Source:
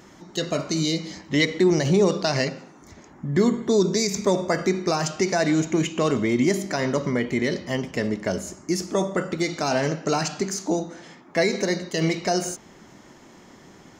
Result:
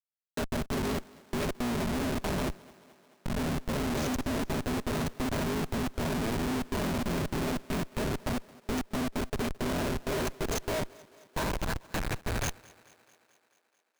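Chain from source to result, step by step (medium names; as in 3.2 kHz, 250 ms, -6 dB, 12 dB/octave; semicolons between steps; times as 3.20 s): cycle switcher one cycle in 3, inverted; gate with hold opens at -35 dBFS; rippled EQ curve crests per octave 1.5, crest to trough 14 dB; in parallel at -2 dB: peak limiter -12 dBFS, peak gain reduction 7 dB; on the sum: level held to a coarse grid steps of 22 dB; bit crusher 9-bit; high-pass sweep 200 Hz -> 1.7 kHz, 9.61–11.99 s; Schmitt trigger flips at -19.5 dBFS; thinning echo 218 ms, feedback 66%, high-pass 160 Hz, level -22 dB; endings held to a fixed fall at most 590 dB/s; trim -7.5 dB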